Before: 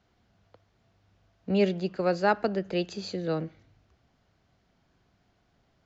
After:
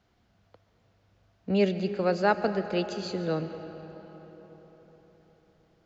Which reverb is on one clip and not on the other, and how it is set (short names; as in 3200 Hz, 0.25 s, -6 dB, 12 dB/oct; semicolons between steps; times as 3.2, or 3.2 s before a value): digital reverb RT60 4.7 s, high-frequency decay 0.6×, pre-delay 85 ms, DRR 10 dB